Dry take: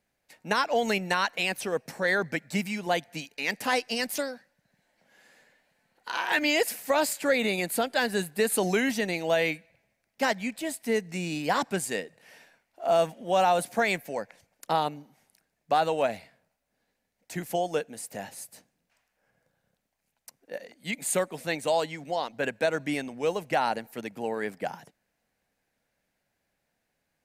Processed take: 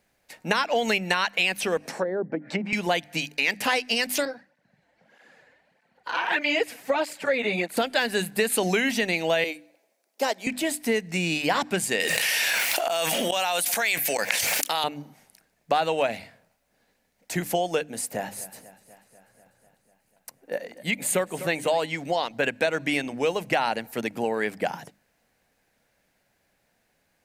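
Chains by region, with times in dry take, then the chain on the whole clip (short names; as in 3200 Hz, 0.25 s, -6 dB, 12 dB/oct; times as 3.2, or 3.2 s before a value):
1.77–2.73 HPF 250 Hz + treble ducked by the level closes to 420 Hz, closed at -25.5 dBFS + upward compressor, threshold -43 dBFS
4.25–7.77 LPF 2200 Hz 6 dB/oct + tape flanging out of phase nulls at 1.6 Hz, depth 5.5 ms
9.44–10.47 HPF 320 Hz 24 dB/oct + bell 2000 Hz -11 dB 1.6 oct
12–14.84 tilt +4 dB/oct + flipped gate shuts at -22 dBFS, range -24 dB + fast leveller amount 100%
18.11–21.86 bell 5200 Hz -5.5 dB 2.1 oct + warbling echo 0.246 s, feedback 70%, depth 56 cents, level -18 dB
whole clip: notches 50/100/150/200/250/300 Hz; dynamic EQ 2700 Hz, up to +6 dB, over -43 dBFS, Q 1.2; compressor 2.5:1, threshold -32 dBFS; gain +8.5 dB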